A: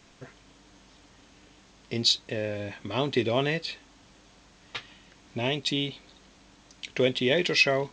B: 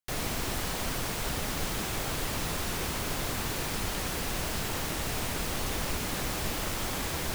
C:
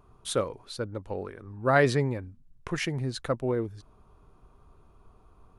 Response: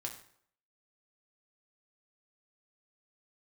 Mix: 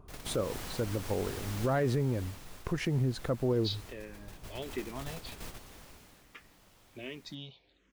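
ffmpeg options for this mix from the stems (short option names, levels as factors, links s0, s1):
-filter_complex "[0:a]lowpass=5200,asplit=2[s0][s1];[s1]afreqshift=-1.3[s2];[s0][s2]amix=inputs=2:normalize=1,adelay=1600,volume=0.266[s3];[1:a]volume=0.841,afade=t=out:st=1.82:d=0.57:silence=0.334965,afade=t=in:st=4.36:d=0.46:silence=0.421697,afade=t=out:st=5.78:d=0.48:silence=0.316228[s4];[2:a]tiltshelf=f=870:g=5.5,acontrast=56,volume=0.501,asplit=2[s5][s6];[s6]apad=whole_len=323985[s7];[s4][s7]sidechaingate=range=0.355:threshold=0.00355:ratio=16:detection=peak[s8];[s3][s8][s5]amix=inputs=3:normalize=0,alimiter=limit=0.0841:level=0:latency=1:release=141"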